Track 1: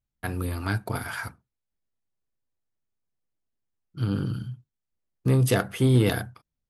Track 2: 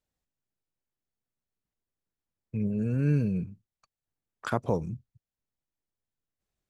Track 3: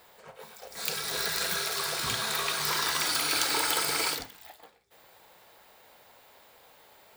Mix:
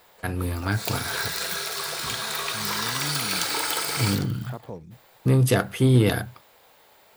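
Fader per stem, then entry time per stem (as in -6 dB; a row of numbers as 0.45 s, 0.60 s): +2.0 dB, -10.0 dB, +1.0 dB; 0.00 s, 0.00 s, 0.00 s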